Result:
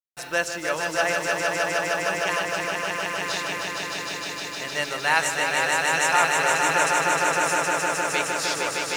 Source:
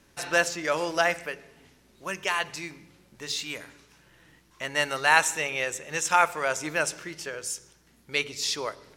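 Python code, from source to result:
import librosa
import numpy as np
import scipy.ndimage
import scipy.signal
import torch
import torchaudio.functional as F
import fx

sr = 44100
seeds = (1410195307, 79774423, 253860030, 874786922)

y = fx.echo_swell(x, sr, ms=154, loudest=5, wet_db=-4.0)
y = fx.quant_dither(y, sr, seeds[0], bits=8, dither='none')
y = F.gain(torch.from_numpy(y), -1.5).numpy()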